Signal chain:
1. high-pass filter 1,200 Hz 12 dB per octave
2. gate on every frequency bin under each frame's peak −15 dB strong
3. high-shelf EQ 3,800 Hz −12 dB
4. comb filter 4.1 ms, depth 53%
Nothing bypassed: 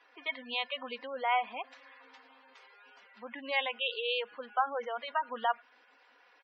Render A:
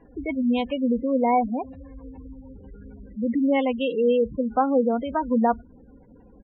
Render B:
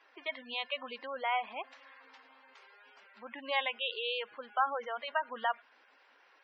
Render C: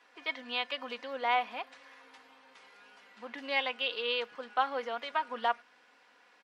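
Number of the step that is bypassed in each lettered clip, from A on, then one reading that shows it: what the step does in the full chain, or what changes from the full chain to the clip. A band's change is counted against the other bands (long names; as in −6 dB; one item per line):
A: 1, 250 Hz band +26.5 dB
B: 4, 250 Hz band −1.5 dB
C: 2, 250 Hz band +2.0 dB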